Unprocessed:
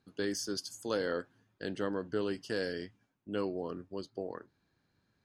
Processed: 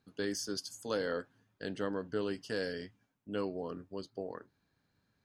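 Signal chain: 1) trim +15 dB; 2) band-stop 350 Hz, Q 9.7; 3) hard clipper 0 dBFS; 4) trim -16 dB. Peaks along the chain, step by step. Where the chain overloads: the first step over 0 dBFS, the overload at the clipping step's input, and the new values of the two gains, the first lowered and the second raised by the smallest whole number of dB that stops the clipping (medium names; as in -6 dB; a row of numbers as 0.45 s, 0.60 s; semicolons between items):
-5.5 dBFS, -5.5 dBFS, -5.5 dBFS, -21.5 dBFS; nothing clips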